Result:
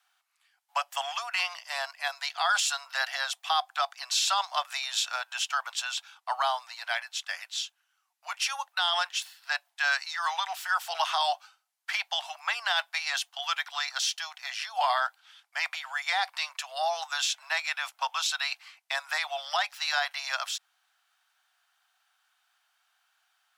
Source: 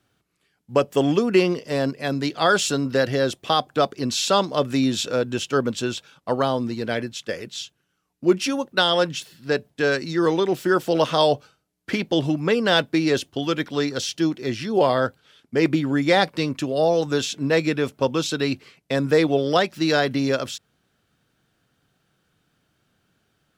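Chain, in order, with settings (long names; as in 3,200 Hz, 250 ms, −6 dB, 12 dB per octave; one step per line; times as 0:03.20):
Butterworth high-pass 720 Hz 72 dB per octave
brickwall limiter −16.5 dBFS, peak gain reduction 9.5 dB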